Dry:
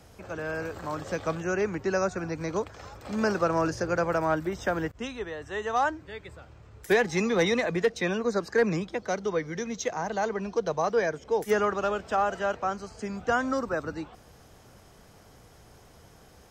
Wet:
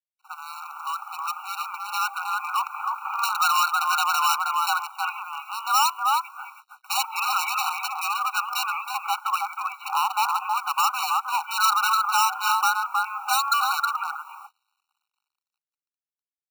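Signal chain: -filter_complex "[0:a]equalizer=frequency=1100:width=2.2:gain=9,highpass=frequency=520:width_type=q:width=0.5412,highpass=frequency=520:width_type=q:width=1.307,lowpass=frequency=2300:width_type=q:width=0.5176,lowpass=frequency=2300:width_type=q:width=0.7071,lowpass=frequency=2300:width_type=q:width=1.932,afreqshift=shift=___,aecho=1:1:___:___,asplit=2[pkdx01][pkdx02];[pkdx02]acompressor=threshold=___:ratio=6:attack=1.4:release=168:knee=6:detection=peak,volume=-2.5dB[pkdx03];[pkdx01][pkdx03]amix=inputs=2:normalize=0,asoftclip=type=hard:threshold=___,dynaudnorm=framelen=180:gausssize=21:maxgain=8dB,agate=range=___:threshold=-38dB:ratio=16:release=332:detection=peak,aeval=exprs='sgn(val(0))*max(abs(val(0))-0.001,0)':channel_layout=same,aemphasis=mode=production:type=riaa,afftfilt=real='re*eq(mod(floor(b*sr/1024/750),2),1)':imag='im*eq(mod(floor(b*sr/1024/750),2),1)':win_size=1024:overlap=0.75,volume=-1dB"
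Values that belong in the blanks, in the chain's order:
75, 316, 0.422, -33dB, -24.5dB, -20dB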